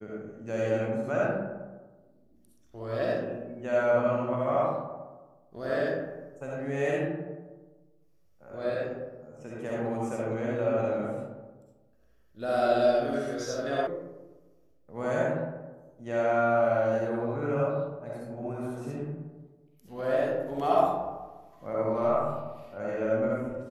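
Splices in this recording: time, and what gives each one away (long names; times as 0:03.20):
0:13.87: cut off before it has died away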